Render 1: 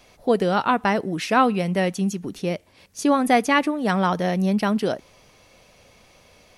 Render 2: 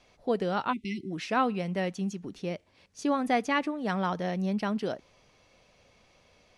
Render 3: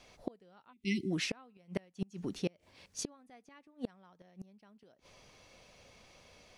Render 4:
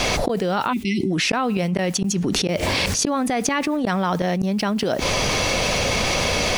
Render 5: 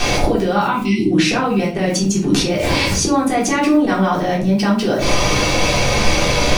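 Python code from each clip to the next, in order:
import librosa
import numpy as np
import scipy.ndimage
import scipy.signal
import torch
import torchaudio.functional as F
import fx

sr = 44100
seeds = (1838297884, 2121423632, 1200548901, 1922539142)

y1 = scipy.signal.sosfilt(scipy.signal.butter(2, 6700.0, 'lowpass', fs=sr, output='sos'), x)
y1 = fx.spec_erase(y1, sr, start_s=0.72, length_s=0.39, low_hz=400.0, high_hz=2000.0)
y1 = y1 * librosa.db_to_amplitude(-8.5)
y2 = fx.high_shelf(y1, sr, hz=5500.0, db=6.0)
y2 = fx.gate_flip(y2, sr, shuts_db=-24.0, range_db=-33)
y2 = y2 * librosa.db_to_amplitude(1.5)
y3 = fx.env_flatten(y2, sr, amount_pct=100)
y3 = y3 * librosa.db_to_amplitude(8.5)
y4 = fx.room_shoebox(y3, sr, seeds[0], volume_m3=310.0, walls='furnished', distance_m=3.6)
y4 = y4 * librosa.db_to_amplitude(-2.5)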